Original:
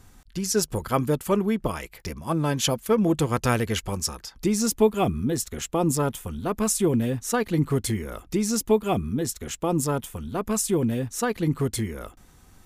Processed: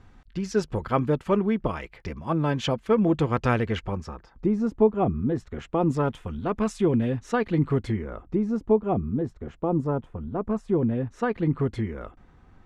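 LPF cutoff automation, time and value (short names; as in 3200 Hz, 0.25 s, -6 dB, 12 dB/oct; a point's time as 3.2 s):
3.57 s 2800 Hz
4.41 s 1100 Hz
4.97 s 1100 Hz
6.17 s 2800 Hz
7.68 s 2800 Hz
8.41 s 1000 Hz
10.5 s 1000 Hz
11.27 s 2000 Hz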